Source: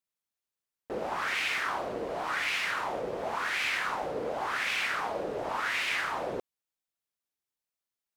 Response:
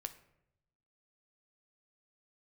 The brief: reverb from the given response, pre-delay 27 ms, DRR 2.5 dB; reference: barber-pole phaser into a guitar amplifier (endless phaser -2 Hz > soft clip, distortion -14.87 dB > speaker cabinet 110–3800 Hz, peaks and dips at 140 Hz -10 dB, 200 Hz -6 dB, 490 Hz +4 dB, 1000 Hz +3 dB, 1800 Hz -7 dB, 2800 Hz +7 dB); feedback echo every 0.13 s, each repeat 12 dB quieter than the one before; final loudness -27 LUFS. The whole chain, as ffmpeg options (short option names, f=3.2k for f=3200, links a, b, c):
-filter_complex "[0:a]aecho=1:1:130|260|390:0.251|0.0628|0.0157,asplit=2[a][b];[1:a]atrim=start_sample=2205,adelay=27[c];[b][c]afir=irnorm=-1:irlink=0,volume=0dB[d];[a][d]amix=inputs=2:normalize=0,asplit=2[e][f];[f]afreqshift=-2[g];[e][g]amix=inputs=2:normalize=1,asoftclip=threshold=-28dB,highpass=110,equalizer=f=140:t=q:w=4:g=-10,equalizer=f=200:t=q:w=4:g=-6,equalizer=f=490:t=q:w=4:g=4,equalizer=f=1k:t=q:w=4:g=3,equalizer=f=1.8k:t=q:w=4:g=-7,equalizer=f=2.8k:t=q:w=4:g=7,lowpass=f=3.8k:w=0.5412,lowpass=f=3.8k:w=1.3066,volume=6.5dB"